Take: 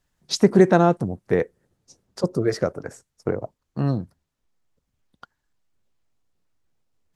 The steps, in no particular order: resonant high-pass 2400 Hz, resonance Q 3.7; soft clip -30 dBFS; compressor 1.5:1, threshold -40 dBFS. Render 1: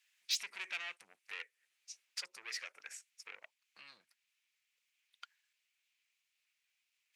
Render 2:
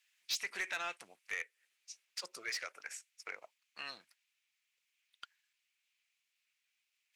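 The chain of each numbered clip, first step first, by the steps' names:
compressor > soft clip > resonant high-pass; resonant high-pass > compressor > soft clip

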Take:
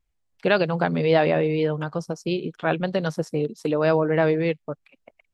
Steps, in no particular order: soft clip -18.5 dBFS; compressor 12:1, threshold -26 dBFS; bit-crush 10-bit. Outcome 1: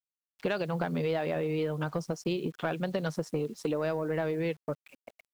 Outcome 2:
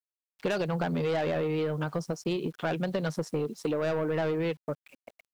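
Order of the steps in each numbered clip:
compressor > soft clip > bit-crush; soft clip > bit-crush > compressor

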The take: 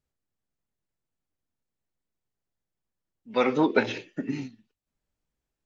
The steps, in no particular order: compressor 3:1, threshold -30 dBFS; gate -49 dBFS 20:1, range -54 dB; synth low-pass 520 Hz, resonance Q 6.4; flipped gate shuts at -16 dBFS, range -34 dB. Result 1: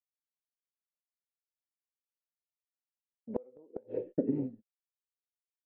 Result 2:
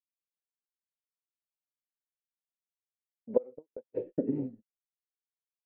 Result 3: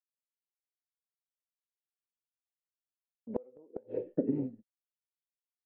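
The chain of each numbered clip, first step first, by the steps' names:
gate > compressor > synth low-pass > flipped gate; flipped gate > gate > compressor > synth low-pass; compressor > synth low-pass > gate > flipped gate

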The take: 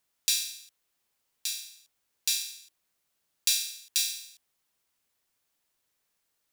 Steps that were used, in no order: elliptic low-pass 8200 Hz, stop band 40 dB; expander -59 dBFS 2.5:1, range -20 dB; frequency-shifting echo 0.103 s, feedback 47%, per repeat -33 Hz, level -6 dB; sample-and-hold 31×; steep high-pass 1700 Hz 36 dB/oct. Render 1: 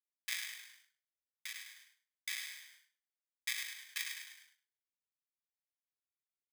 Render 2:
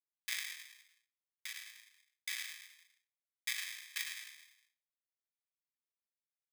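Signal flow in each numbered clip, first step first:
elliptic low-pass > sample-and-hold > steep high-pass > frequency-shifting echo > expander; frequency-shifting echo > expander > elliptic low-pass > sample-and-hold > steep high-pass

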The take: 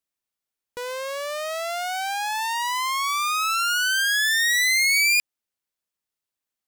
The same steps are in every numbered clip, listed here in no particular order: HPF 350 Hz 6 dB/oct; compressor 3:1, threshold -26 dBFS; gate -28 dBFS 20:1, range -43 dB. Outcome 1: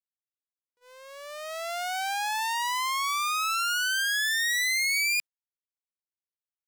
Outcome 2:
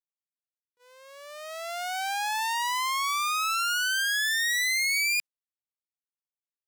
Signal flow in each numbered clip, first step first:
HPF > gate > compressor; gate > compressor > HPF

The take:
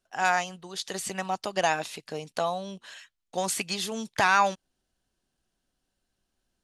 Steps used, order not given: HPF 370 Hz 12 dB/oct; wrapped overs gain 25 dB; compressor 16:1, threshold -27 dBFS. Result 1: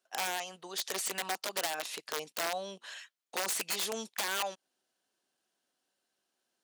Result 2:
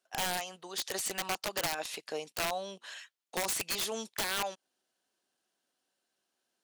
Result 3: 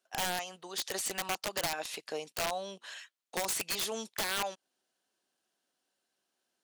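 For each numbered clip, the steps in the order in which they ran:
compressor > wrapped overs > HPF; HPF > compressor > wrapped overs; compressor > HPF > wrapped overs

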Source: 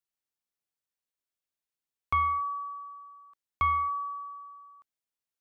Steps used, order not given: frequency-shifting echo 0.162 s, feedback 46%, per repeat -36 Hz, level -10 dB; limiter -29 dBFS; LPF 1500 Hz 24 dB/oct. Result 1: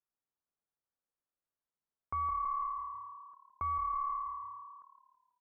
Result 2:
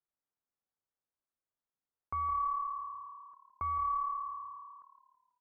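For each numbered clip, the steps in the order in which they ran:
frequency-shifting echo > LPF > limiter; LPF > limiter > frequency-shifting echo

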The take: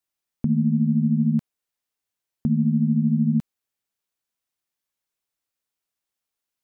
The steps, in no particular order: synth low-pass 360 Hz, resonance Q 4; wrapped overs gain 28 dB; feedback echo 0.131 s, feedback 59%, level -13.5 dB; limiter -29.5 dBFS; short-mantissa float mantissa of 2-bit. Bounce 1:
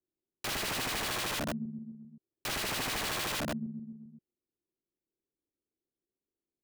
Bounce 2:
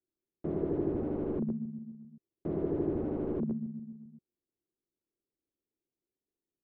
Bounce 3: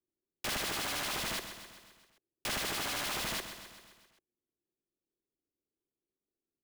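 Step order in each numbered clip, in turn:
feedback echo > short-mantissa float > synth low-pass > wrapped overs > limiter; feedback echo > short-mantissa float > wrapped overs > limiter > synth low-pass; synth low-pass > wrapped overs > feedback echo > limiter > short-mantissa float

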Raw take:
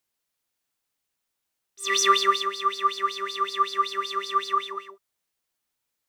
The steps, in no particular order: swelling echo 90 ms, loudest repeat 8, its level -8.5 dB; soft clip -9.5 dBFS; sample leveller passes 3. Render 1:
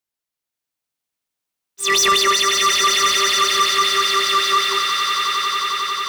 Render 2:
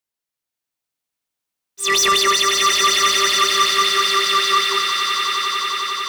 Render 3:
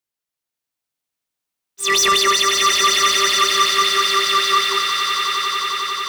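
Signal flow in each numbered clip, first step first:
sample leveller > swelling echo > soft clip; soft clip > sample leveller > swelling echo; sample leveller > soft clip > swelling echo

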